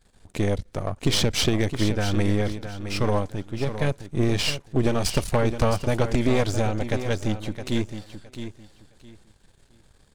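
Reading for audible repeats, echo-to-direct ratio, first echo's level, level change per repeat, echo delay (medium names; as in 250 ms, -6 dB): 2, -10.0 dB, -10.0 dB, -13.0 dB, 664 ms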